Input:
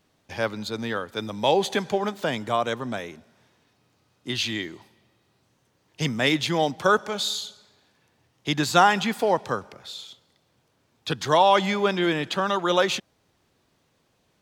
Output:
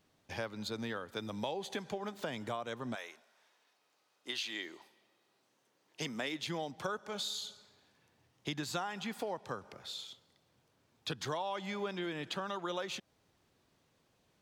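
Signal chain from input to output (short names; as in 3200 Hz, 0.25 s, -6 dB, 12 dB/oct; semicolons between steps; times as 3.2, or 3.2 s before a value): 2.94–6.46 HPF 790 Hz -> 210 Hz 12 dB/oct; compressor 6:1, threshold -30 dBFS, peak gain reduction 17 dB; gain -5.5 dB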